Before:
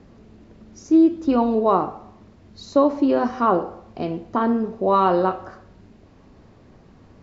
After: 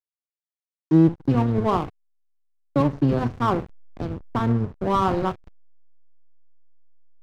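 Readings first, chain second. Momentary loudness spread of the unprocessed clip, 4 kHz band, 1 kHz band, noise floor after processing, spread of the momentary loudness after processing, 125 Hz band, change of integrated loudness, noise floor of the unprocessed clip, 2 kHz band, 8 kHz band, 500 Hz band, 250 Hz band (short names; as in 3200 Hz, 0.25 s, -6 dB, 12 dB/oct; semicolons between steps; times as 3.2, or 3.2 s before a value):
13 LU, -0.5 dB, -4.5 dB, under -85 dBFS, 14 LU, +12.5 dB, -2.5 dB, -51 dBFS, -1.5 dB, n/a, -6.0 dB, -2.5 dB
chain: octaver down 1 oct, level 0 dB; dynamic EQ 580 Hz, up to -5 dB, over -31 dBFS, Q 2.4; backlash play -21 dBFS; gain -2 dB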